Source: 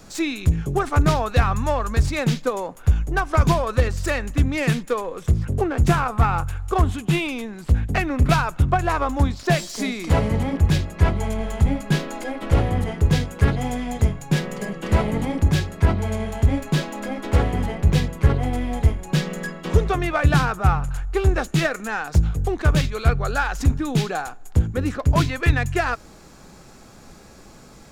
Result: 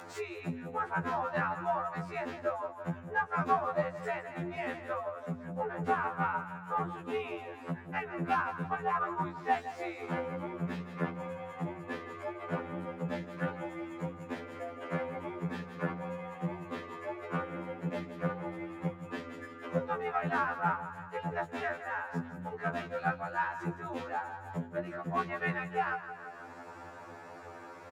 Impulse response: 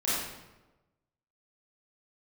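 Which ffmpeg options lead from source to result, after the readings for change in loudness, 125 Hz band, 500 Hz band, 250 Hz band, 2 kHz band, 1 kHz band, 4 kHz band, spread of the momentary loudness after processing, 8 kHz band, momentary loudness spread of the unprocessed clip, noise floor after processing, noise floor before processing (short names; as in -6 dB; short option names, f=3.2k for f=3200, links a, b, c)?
-14.0 dB, -21.5 dB, -11.0 dB, -14.5 dB, -10.0 dB, -7.5 dB, -20.5 dB, 9 LU, under -25 dB, 6 LU, -48 dBFS, -45 dBFS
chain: -filter_complex "[0:a]aecho=1:1:166|332|498|664:0.266|0.109|0.0447|0.0183,aeval=exprs='0.708*(cos(1*acos(clip(val(0)/0.708,-1,1)))-cos(1*PI/2))+0.0891*(cos(3*acos(clip(val(0)/0.708,-1,1)))-cos(3*PI/2))+0.0501*(cos(4*acos(clip(val(0)/0.708,-1,1)))-cos(4*PI/2))+0.0447*(cos(6*acos(clip(val(0)/0.708,-1,1)))-cos(6*PI/2))':c=same,afreqshift=87,acrossover=split=480 2100:gain=0.158 1 0.0891[a][b][c];[a][b][c]amix=inputs=3:normalize=0,acompressor=mode=upward:threshold=-30dB:ratio=2.5,afftfilt=real='re*2*eq(mod(b,4),0)':imag='im*2*eq(mod(b,4),0)':win_size=2048:overlap=0.75,volume=-2.5dB"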